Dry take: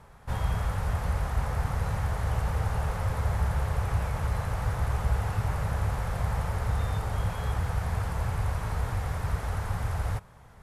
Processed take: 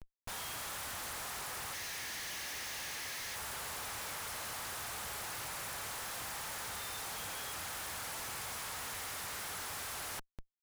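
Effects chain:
first difference
gain on a spectral selection 0:01.74–0:03.35, 1,600–6,700 Hz +10 dB
comparator with hysteresis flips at −57.5 dBFS
level +7 dB

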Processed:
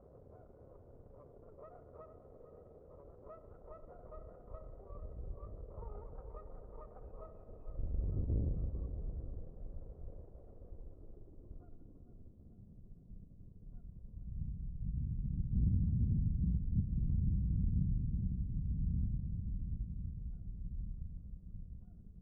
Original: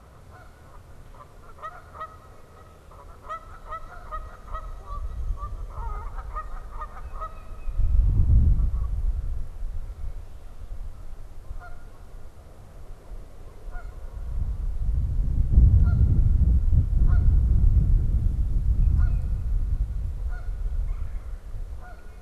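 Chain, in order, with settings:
gain on one half-wave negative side −7 dB
low-shelf EQ 84 Hz −6.5 dB
tube saturation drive 22 dB, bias 0.4
low-pass filter sweep 500 Hz → 190 Hz, 0:10.42–0:12.86
tape delay 450 ms, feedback 64%, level −10 dB, low-pass 1,700 Hz
level −5 dB

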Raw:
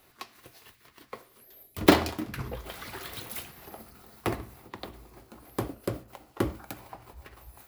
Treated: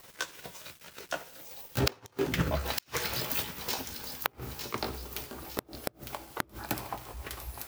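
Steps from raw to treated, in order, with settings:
pitch glide at a constant tempo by +6 semitones ending unshifted
delay with a high-pass on its return 906 ms, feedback 45%, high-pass 4,100 Hz, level −5.5 dB
bit reduction 10 bits
gate with flip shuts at −18 dBFS, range −38 dB
level +8.5 dB

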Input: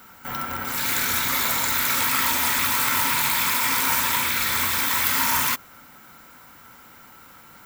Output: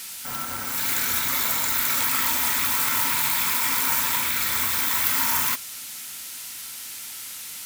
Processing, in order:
noise in a band 1,800–14,000 Hz −36 dBFS
high-shelf EQ 6,300 Hz +5 dB
level −4 dB

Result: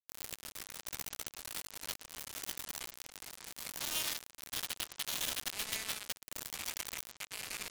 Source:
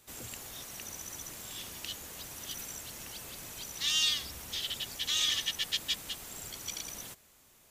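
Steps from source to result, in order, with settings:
sub-octave generator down 1 octave, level −5 dB
downward compressor 2 to 1, threshold −42 dBFS, peak gain reduction 10 dB
0:03.01–0:03.70: transient designer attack −5 dB, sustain +1 dB
brickwall limiter −33 dBFS, peak gain reduction 8.5 dB
bit reduction 6 bits
delay with pitch and tempo change per echo 140 ms, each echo −6 semitones, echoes 3, each echo −6 dB
level +7 dB

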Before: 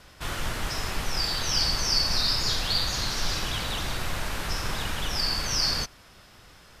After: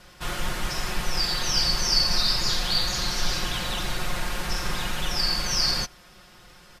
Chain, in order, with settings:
comb filter 5.6 ms

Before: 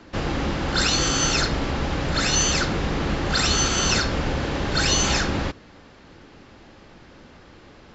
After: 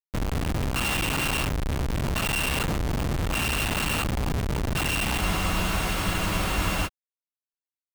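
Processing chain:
samples sorted by size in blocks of 16 samples
high-shelf EQ 5,100 Hz +4 dB
phaser with its sweep stopped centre 1,800 Hz, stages 6
comparator with hysteresis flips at −23.5 dBFS
frozen spectrum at 0:05.23, 1.63 s

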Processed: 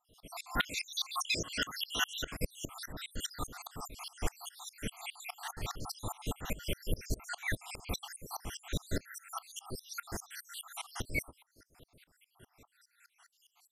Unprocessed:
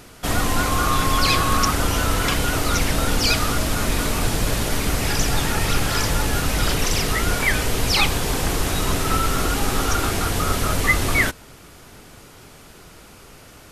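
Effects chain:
time-frequency cells dropped at random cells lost 75%
0:00.57–0:02.22: meter weighting curve D
tremolo with a ramp in dB swelling 4.9 Hz, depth 25 dB
level −6 dB

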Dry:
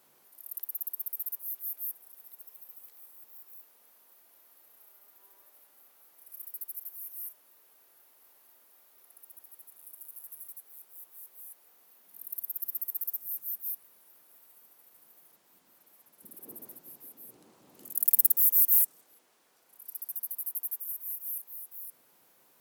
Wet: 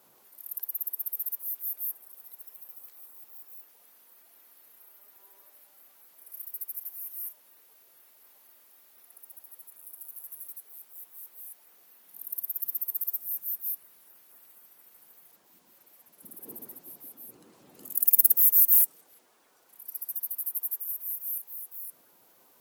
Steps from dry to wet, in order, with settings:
spectral magnitudes quantised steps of 15 dB
level +3.5 dB

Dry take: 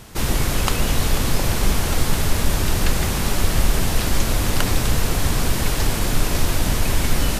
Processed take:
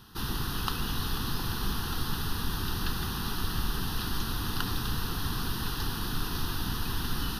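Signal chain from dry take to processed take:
low-shelf EQ 110 Hz −8.5 dB
phaser with its sweep stopped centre 2,200 Hz, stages 6
level −6.5 dB

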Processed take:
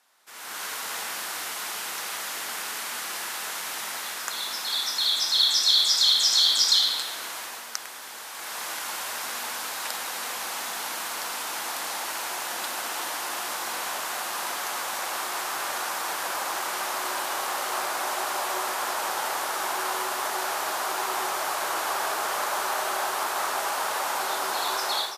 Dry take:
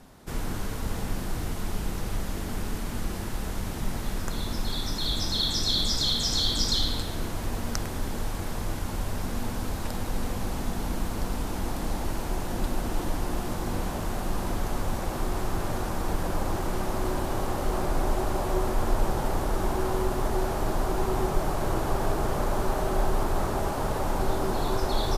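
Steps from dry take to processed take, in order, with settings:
high-pass filter 1,200 Hz 12 dB per octave
automatic gain control gain up to 16 dB
level −6 dB

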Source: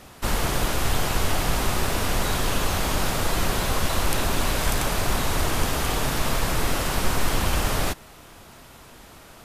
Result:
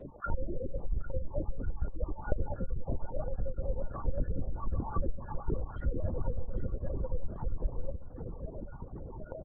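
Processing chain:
time-frequency cells dropped at random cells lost 24%
low-pass filter 1,400 Hz 12 dB per octave
parametric band 450 Hz +13.5 dB 0.4 octaves
mains-hum notches 50/100/150/200 Hz
comb filter 3.5 ms, depth 87%
downward compressor 10 to 1, threshold −30 dBFS, peak gain reduction 19 dB
spectral peaks only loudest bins 4
repeating echo 790 ms, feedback 51%, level −12 dB
on a send at −3 dB: convolution reverb, pre-delay 3 ms
on the sum: linear-prediction vocoder at 8 kHz whisper
level +3.5 dB

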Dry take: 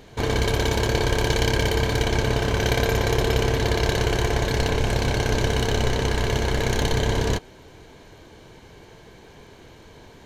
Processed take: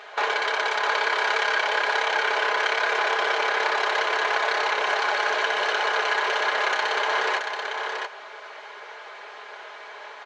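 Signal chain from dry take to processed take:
lower of the sound and its delayed copy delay 4.8 ms
high-pass filter 530 Hz 24 dB per octave
downward compressor 5 to 1, threshold −32 dBFS, peak gain reduction 9 dB
Gaussian smoothing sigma 1.6 samples
parametric band 1,400 Hz +8.5 dB 1.7 octaves
single-tap delay 680 ms −5 dB
level +6.5 dB

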